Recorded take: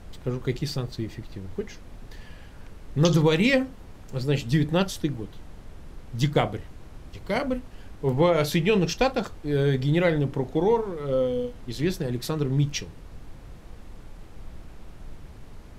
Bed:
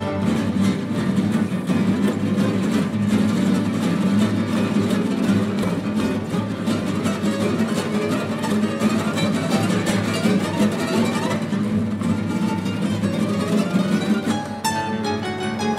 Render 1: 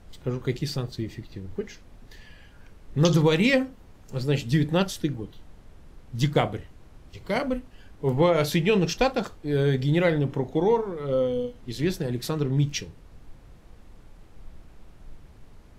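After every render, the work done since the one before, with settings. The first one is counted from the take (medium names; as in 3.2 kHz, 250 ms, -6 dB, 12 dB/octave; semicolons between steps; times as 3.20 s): noise print and reduce 6 dB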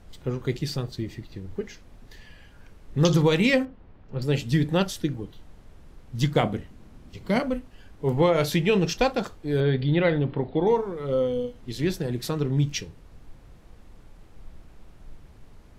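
3.65–4.22 s: distance through air 330 m; 6.43–7.41 s: peaking EQ 220 Hz +9 dB; 9.60–10.67 s: steep low-pass 4.7 kHz 96 dB/octave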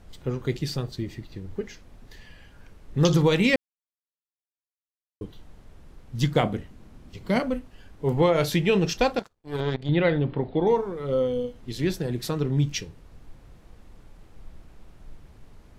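3.56–5.21 s: mute; 9.19–9.89 s: power-law waveshaper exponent 2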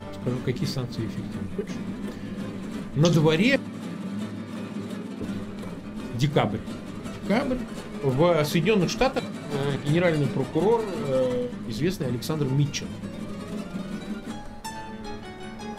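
add bed -14 dB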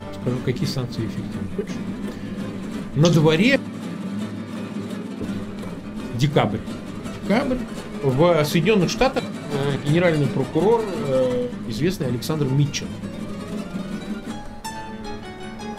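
trim +4 dB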